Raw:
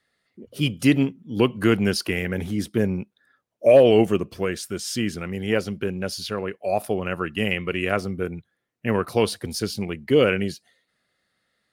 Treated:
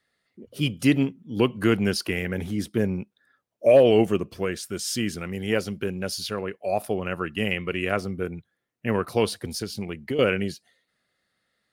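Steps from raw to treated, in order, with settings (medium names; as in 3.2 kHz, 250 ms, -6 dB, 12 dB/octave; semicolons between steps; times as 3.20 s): 4.73–6.41 s: treble shelf 4.8 kHz +5 dB; 9.47–10.19 s: compression 6:1, threshold -24 dBFS, peak gain reduction 11 dB; trim -2 dB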